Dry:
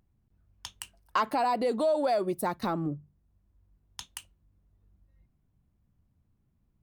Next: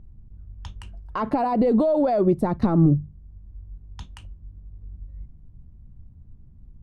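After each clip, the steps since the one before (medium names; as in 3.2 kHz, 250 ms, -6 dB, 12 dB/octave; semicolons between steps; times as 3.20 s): peak limiter -25 dBFS, peak gain reduction 9 dB; low-pass 9.1 kHz; tilt EQ -4.5 dB/octave; trim +6.5 dB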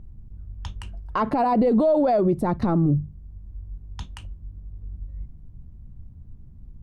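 peak limiter -17 dBFS, peak gain reduction 8 dB; trim +3.5 dB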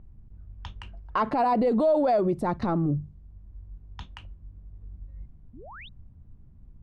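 painted sound rise, 5.53–5.89 s, 210–4000 Hz -43 dBFS; level-controlled noise filter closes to 2.6 kHz, open at -15.5 dBFS; bass shelf 430 Hz -7 dB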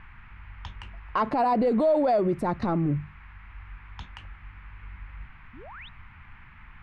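band noise 860–2400 Hz -54 dBFS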